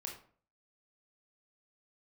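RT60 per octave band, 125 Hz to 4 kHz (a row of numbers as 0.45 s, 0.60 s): 0.55 s, 0.50 s, 0.50 s, 0.45 s, 0.40 s, 0.30 s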